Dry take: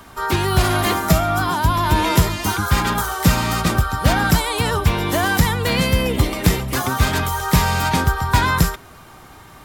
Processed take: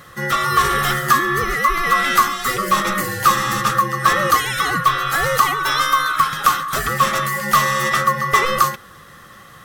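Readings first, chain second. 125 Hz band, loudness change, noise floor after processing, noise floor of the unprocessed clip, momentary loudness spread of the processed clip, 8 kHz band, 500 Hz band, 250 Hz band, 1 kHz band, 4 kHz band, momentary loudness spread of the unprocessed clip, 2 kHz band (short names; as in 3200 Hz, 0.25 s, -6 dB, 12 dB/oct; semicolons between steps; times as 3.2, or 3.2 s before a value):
-10.5 dB, +1.5 dB, -43 dBFS, -43 dBFS, 4 LU, +0.5 dB, -1.5 dB, -7.5 dB, +5.0 dB, 0.0 dB, 3 LU, +3.5 dB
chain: band-swap scrambler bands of 1000 Hz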